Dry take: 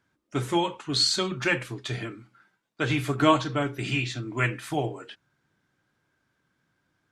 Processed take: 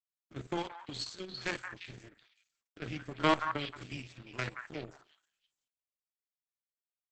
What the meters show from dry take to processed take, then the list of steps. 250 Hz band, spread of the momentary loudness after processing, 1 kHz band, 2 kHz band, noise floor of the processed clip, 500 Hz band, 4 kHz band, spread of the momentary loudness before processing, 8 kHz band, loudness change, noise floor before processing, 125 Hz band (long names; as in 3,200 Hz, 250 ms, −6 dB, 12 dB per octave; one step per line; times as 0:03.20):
−11.5 dB, 18 LU, −8.0 dB, −10.0 dB, below −85 dBFS, −10.5 dB, −13.5 dB, 12 LU, −16.5 dB, −10.5 dB, −75 dBFS, −14.0 dB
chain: spectrum averaged block by block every 50 ms
in parallel at +2.5 dB: downward compressor 16 to 1, threshold −33 dBFS, peak gain reduction 19 dB
on the sum: power curve on the samples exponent 2
rotating-speaker cabinet horn 1.1 Hz, later 6 Hz, at 0:05.02
on a send: echo through a band-pass that steps 174 ms, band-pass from 1,300 Hz, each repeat 1.4 octaves, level −2.5 dB
on the sum: Opus 10 kbit/s 48,000 Hz